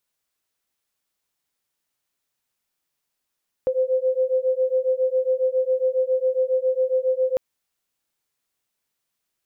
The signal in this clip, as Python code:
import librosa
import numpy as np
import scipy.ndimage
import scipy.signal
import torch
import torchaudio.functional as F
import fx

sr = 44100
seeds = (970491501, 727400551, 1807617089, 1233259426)

y = fx.two_tone_beats(sr, length_s=3.7, hz=513.0, beat_hz=7.3, level_db=-21.5)